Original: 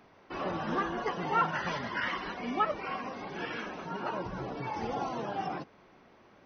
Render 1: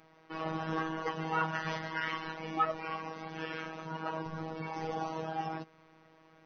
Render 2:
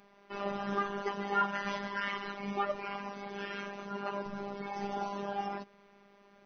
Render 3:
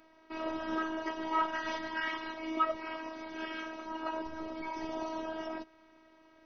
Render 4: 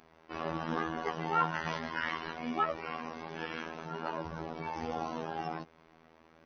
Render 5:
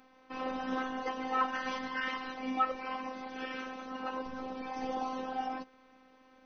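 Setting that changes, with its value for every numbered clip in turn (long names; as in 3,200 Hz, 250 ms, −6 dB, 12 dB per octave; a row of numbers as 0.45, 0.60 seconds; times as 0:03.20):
phases set to zero, frequency: 160, 200, 320, 81, 260 Hertz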